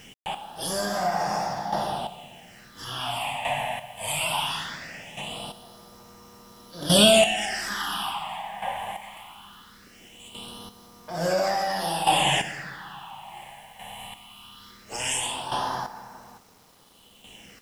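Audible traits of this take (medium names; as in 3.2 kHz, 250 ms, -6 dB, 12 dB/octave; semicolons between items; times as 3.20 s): chopped level 0.58 Hz, depth 65%, duty 20%; phasing stages 6, 0.2 Hz, lowest notch 350–3000 Hz; a quantiser's noise floor 10-bit, dither none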